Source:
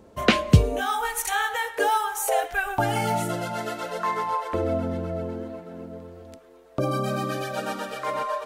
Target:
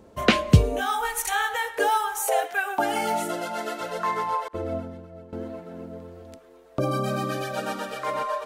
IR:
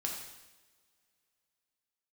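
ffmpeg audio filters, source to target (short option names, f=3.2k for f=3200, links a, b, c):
-filter_complex "[0:a]asettb=1/sr,asplit=3[a][b][c];[a]atrim=end=2.204[d];[b]atrim=start=2.2:end=3.81,asetpts=PTS-STARTPTS,afade=t=in:d=0.004:c=qsin,afade=t=out:st=1.606:d=0.004:c=qsin,highpass=f=220:w=0.5412,highpass=f=220:w=1.3066[e];[c]atrim=start=3.806[f];[d][e]acrossfade=d=0.004:c1=hsin:c2=qsin[g];[g][f]acrossfade=d=0.004:c1=qsin:c2=hsin,asettb=1/sr,asplit=3[h][i][j];[h]atrim=end=4.484[k];[i]atrim=start=4.48:end=5.33,asetpts=PTS-STARTPTS,afade=t=in:d=0.004:c=qsin,afade=t=out:st=0.846:d=0.004:c=qsin,agate=range=-33dB:threshold=-19dB:ratio=3:detection=peak[l];[j]atrim=start=5.326[m];[k][l]acrossfade=d=0.004:c1=hsin:c2=qsin[n];[n][m]acrossfade=d=0.004:c1=qsin:c2=hsin"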